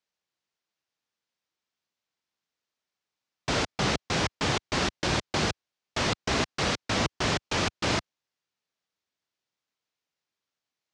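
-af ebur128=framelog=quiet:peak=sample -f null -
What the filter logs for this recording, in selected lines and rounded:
Integrated loudness:
  I:         -28.2 LUFS
  Threshold: -38.3 LUFS
Loudness range:
  LRA:         7.7 LU
  Threshold: -50.1 LUFS
  LRA low:   -35.8 LUFS
  LRA high:  -28.1 LUFS
Sample peak:
  Peak:      -13.7 dBFS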